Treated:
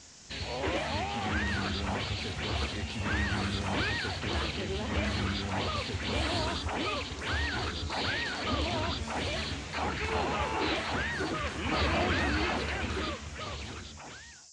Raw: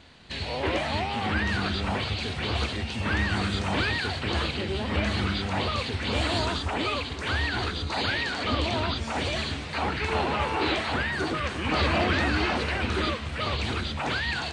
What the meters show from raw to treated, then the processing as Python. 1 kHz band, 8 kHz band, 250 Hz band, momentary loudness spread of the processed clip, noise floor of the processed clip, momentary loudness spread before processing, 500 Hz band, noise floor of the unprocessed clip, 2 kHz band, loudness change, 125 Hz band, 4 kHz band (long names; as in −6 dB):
−5.0 dB, 0.0 dB, −4.5 dB, 6 LU, −46 dBFS, 4 LU, −4.5 dB, −35 dBFS, −5.0 dB, −4.5 dB, −5.0 dB, −5.0 dB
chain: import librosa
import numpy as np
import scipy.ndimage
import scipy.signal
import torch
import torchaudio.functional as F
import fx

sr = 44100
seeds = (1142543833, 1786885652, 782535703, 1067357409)

y = fx.fade_out_tail(x, sr, length_s=1.98)
y = fx.dmg_noise_band(y, sr, seeds[0], low_hz=4800.0, high_hz=7500.0, level_db=-50.0)
y = F.gain(torch.from_numpy(y), -4.5).numpy()